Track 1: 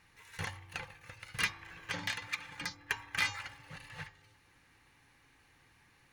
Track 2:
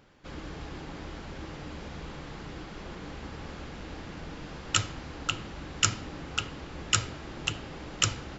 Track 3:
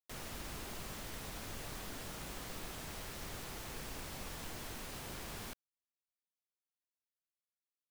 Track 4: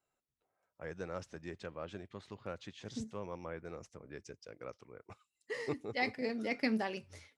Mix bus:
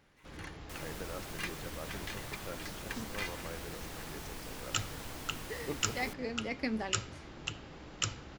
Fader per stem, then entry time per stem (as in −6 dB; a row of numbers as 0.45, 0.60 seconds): −8.0, −8.0, 0.0, −2.0 decibels; 0.00, 0.00, 0.60, 0.00 seconds